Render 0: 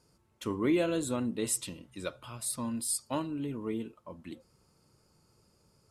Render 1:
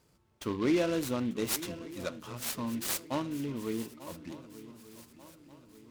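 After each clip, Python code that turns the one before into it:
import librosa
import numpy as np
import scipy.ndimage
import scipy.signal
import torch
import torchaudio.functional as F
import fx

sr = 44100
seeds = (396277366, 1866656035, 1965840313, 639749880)

y = fx.echo_swing(x, sr, ms=1189, ratio=3, feedback_pct=45, wet_db=-16)
y = fx.noise_mod_delay(y, sr, seeds[0], noise_hz=2400.0, depth_ms=0.037)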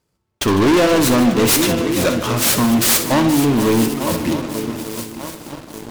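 y = fx.leveller(x, sr, passes=5)
y = fx.echo_multitap(y, sr, ms=(62, 151, 475), db=(-11.0, -14.5, -12.0))
y = F.gain(torch.from_numpy(y), 6.5).numpy()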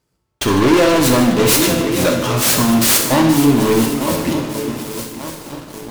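y = fx.rev_gated(x, sr, seeds[1], gate_ms=240, shape='falling', drr_db=3.0)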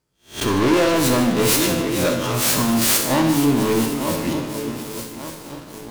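y = fx.spec_swells(x, sr, rise_s=0.31)
y = F.gain(torch.from_numpy(y), -5.5).numpy()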